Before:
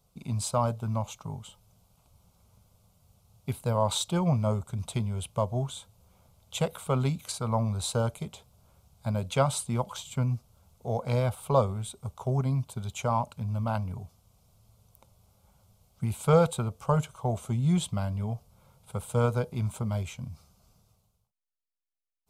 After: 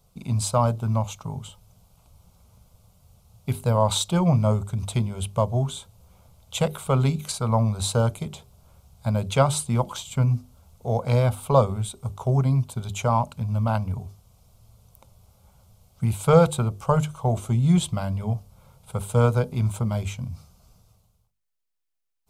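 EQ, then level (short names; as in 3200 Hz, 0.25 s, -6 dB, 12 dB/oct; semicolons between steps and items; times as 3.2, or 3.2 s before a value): low shelf 96 Hz +6 dB; notches 50/100/150/200/250/300/350/400 Hz; +5.0 dB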